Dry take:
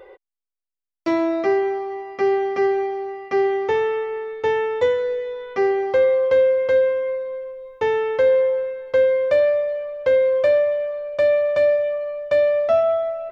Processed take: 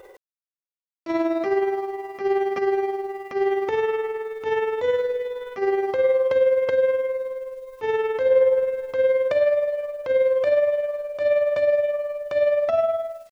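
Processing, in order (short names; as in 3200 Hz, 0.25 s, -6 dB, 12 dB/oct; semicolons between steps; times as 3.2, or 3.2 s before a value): ending faded out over 0.59 s; 8.29–8.93 low shelf 480 Hz +6 dB; bit-crush 10-bit; transient shaper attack -9 dB, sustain +5 dB; tremolo 19 Hz, depth 48%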